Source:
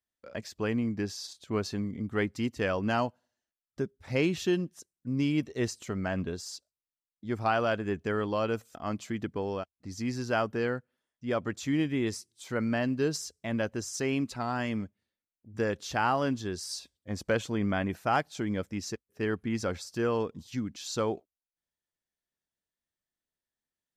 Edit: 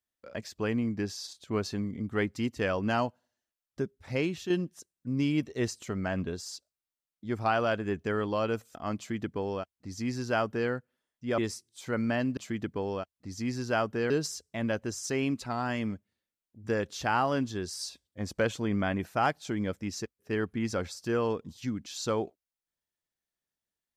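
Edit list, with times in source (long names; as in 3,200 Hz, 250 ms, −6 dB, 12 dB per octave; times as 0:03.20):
0:03.99–0:04.50: fade out, to −8 dB
0:08.97–0:10.70: duplicate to 0:13.00
0:11.38–0:12.01: remove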